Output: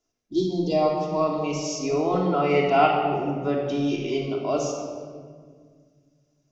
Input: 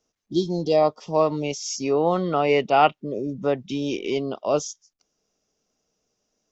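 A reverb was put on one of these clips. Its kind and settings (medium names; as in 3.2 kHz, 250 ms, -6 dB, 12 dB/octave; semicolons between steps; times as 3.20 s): simulated room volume 2700 m³, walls mixed, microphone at 3.1 m; trim -6 dB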